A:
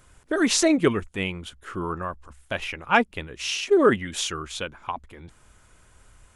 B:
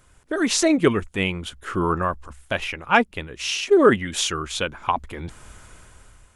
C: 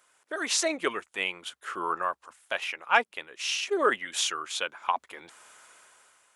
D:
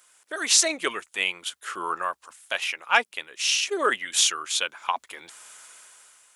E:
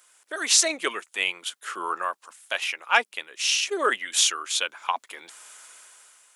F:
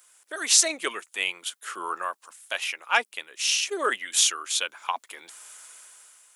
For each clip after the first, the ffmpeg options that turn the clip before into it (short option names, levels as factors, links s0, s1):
-af "dynaudnorm=f=240:g=7:m=5.01,volume=0.891"
-af "highpass=630,volume=0.631"
-af "highshelf=f=2500:g=11.5,volume=0.891"
-af "highpass=230"
-af "highshelf=f=7800:g=7.5,volume=0.75"